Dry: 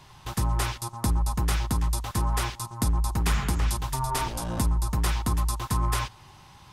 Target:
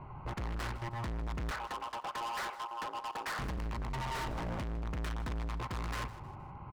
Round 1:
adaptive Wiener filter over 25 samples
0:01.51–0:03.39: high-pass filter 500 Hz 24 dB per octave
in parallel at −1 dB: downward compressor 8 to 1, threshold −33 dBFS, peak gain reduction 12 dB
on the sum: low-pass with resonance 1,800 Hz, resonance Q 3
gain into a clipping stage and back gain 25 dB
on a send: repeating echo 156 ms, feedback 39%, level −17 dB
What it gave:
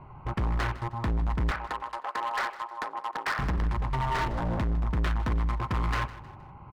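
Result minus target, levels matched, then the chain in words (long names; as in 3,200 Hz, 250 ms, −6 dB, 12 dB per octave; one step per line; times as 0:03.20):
gain into a clipping stage and back: distortion −6 dB
adaptive Wiener filter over 25 samples
0:01.51–0:03.39: high-pass filter 500 Hz 24 dB per octave
in parallel at −1 dB: downward compressor 8 to 1, threshold −33 dBFS, peak gain reduction 12 dB
on the sum: low-pass with resonance 1,800 Hz, resonance Q 3
gain into a clipping stage and back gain 36 dB
on a send: repeating echo 156 ms, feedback 39%, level −17 dB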